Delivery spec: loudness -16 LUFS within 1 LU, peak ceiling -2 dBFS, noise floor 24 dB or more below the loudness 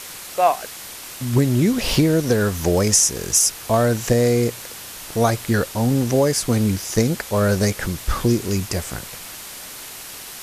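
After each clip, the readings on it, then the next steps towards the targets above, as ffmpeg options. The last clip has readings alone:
noise floor -36 dBFS; noise floor target -44 dBFS; loudness -19.5 LUFS; peak -2.5 dBFS; loudness target -16.0 LUFS
-> -af "afftdn=nr=8:nf=-36"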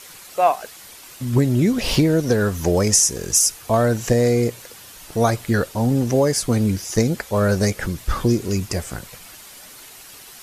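noise floor -42 dBFS; noise floor target -44 dBFS
-> -af "afftdn=nr=6:nf=-42"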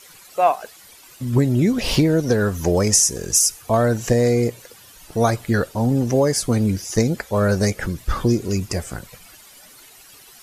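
noise floor -46 dBFS; loudness -19.5 LUFS; peak -3.0 dBFS; loudness target -16.0 LUFS
-> -af "volume=3.5dB,alimiter=limit=-2dB:level=0:latency=1"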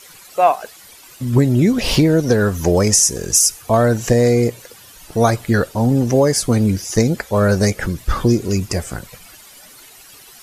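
loudness -16.0 LUFS; peak -2.0 dBFS; noise floor -43 dBFS

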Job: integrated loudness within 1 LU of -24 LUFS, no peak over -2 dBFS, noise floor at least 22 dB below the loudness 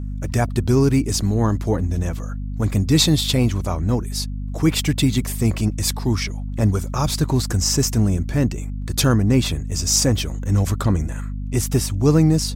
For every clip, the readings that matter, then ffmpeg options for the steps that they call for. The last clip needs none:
hum 50 Hz; harmonics up to 250 Hz; hum level -24 dBFS; loudness -20.0 LUFS; peak -3.5 dBFS; loudness target -24.0 LUFS
-> -af "bandreject=f=50:t=h:w=6,bandreject=f=100:t=h:w=6,bandreject=f=150:t=h:w=6,bandreject=f=200:t=h:w=6,bandreject=f=250:t=h:w=6"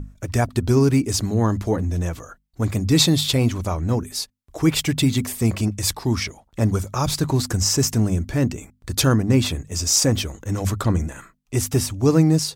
hum none; loudness -21.0 LUFS; peak -4.0 dBFS; loudness target -24.0 LUFS
-> -af "volume=-3dB"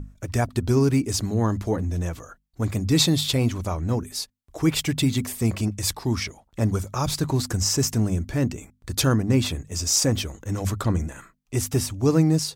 loudness -24.0 LUFS; peak -7.0 dBFS; noise floor -65 dBFS

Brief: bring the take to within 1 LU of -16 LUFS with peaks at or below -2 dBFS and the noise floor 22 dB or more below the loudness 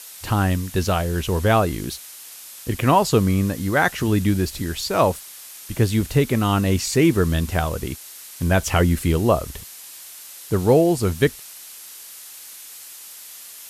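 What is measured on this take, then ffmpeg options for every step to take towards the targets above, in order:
noise floor -40 dBFS; noise floor target -43 dBFS; loudness -20.5 LUFS; peak -4.0 dBFS; loudness target -16.0 LUFS
-> -af "afftdn=nr=6:nf=-40"
-af "volume=4.5dB,alimiter=limit=-2dB:level=0:latency=1"

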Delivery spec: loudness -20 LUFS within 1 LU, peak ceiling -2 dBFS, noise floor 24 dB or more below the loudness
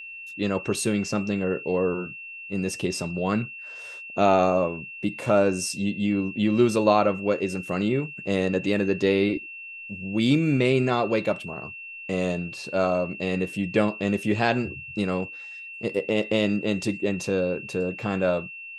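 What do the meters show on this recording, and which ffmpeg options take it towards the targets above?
steady tone 2700 Hz; tone level -37 dBFS; loudness -25.0 LUFS; peak -6.0 dBFS; loudness target -20.0 LUFS
-> -af "bandreject=f=2.7k:w=30"
-af "volume=5dB,alimiter=limit=-2dB:level=0:latency=1"

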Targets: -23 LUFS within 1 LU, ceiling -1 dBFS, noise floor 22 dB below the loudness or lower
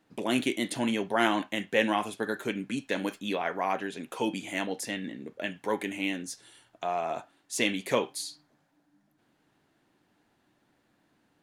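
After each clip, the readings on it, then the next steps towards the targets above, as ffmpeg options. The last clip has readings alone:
loudness -31.0 LUFS; peak -8.0 dBFS; loudness target -23.0 LUFS
-> -af "volume=8dB,alimiter=limit=-1dB:level=0:latency=1"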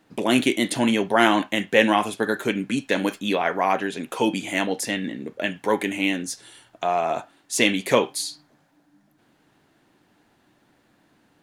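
loudness -23.0 LUFS; peak -1.0 dBFS; noise floor -63 dBFS

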